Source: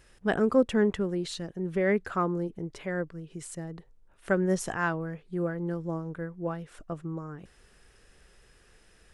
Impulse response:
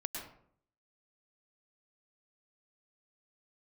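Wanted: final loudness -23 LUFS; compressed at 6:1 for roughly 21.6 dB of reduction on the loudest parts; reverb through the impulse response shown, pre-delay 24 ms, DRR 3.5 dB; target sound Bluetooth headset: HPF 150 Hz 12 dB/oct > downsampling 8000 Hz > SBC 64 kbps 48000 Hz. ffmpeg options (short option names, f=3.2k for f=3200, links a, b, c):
-filter_complex "[0:a]acompressor=threshold=-41dB:ratio=6,asplit=2[a][b];[1:a]atrim=start_sample=2205,adelay=24[c];[b][c]afir=irnorm=-1:irlink=0,volume=-4dB[d];[a][d]amix=inputs=2:normalize=0,highpass=150,aresample=8000,aresample=44100,volume=21dB" -ar 48000 -c:a sbc -b:a 64k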